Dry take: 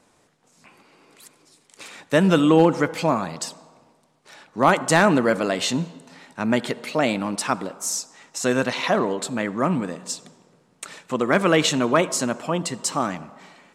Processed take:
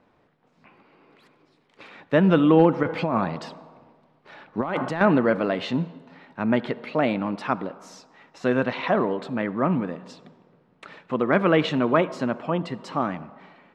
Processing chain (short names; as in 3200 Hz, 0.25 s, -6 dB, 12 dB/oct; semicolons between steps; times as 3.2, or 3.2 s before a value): 2.83–5.01 negative-ratio compressor -23 dBFS, ratio -1; air absorption 350 m